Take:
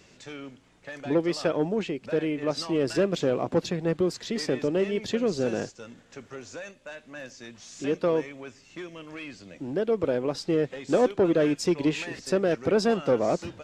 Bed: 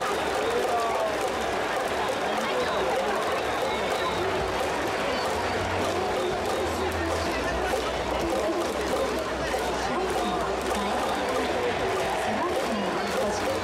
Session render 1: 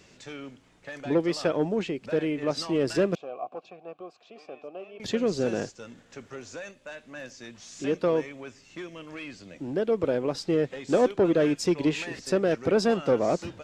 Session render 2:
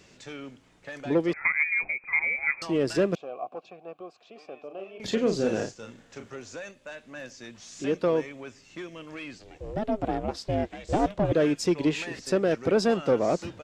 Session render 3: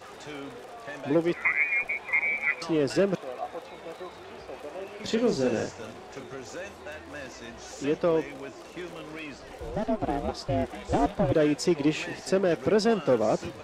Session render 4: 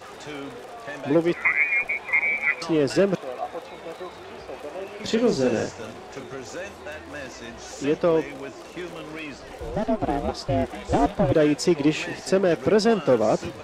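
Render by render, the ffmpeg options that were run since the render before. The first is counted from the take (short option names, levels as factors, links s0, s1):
-filter_complex "[0:a]asettb=1/sr,asplit=3[s0][s1][s2];[s0]atrim=end=3.154[s3];[s1]atrim=start=3.15:end=5,asetpts=PTS-STARTPTS,afade=t=in:d=0.004:c=qsin,afade=t=out:st=1.846:d=0.004:c=qsin,asplit=3[s4][s5][s6];[s4]bandpass=f=730:t=q:w=8,volume=1[s7];[s5]bandpass=f=1090:t=q:w=8,volume=0.501[s8];[s6]bandpass=f=2440:t=q:w=8,volume=0.355[s9];[s7][s8][s9]amix=inputs=3:normalize=0[s10];[s2]atrim=start=4.996[s11];[s3][s10]acrossfade=d=0.004:c1=hsin:c2=qsin[s12];[s12][s11]acrossfade=d=0.004:c1=qsin:c2=hsin"
-filter_complex "[0:a]asettb=1/sr,asplit=3[s0][s1][s2];[s0]atrim=end=1.334[s3];[s1]atrim=start=1.33:end=2.62,asetpts=PTS-STARTPTS,afade=t=in:d=0.004:c=qsin,afade=t=out:st=1.286:d=0.004:c=qsin,lowpass=f=2200:t=q:w=0.5098,lowpass=f=2200:t=q:w=0.6013,lowpass=f=2200:t=q:w=0.9,lowpass=f=2200:t=q:w=2.563,afreqshift=-2600[s4];[s2]atrim=start=2.616[s5];[s3][s4]acrossfade=d=0.004:c1=hsin:c2=qsin[s6];[s6][s5]acrossfade=d=0.004:c1=qsin:c2=hsin,asplit=3[s7][s8][s9];[s7]afade=t=out:st=4.69:d=0.02[s10];[s8]asplit=2[s11][s12];[s12]adelay=36,volume=0.501[s13];[s11][s13]amix=inputs=2:normalize=0,afade=t=in:st=4.69:d=0.02,afade=t=out:st=6.3:d=0.02[s14];[s9]afade=t=in:st=6.3:d=0.02[s15];[s10][s14][s15]amix=inputs=3:normalize=0,asettb=1/sr,asplit=3[s16][s17][s18];[s16]atrim=end=9.384[s19];[s17]atrim=start=9.38:end=11.32,asetpts=PTS-STARTPTS,afade=t=in:d=0.004:c=qsin,afade=t=out:st=1.936:d=0.004:c=qsin,aeval=exprs='val(0)*sin(2*PI*210*n/s)':c=same[s20];[s18]atrim=start=11.316[s21];[s19][s20]acrossfade=d=0.004:c1=hsin:c2=qsin[s22];[s22][s21]acrossfade=d=0.004:c1=qsin:c2=hsin"
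-filter_complex "[1:a]volume=0.119[s0];[0:a][s0]amix=inputs=2:normalize=0"
-af "volume=1.58"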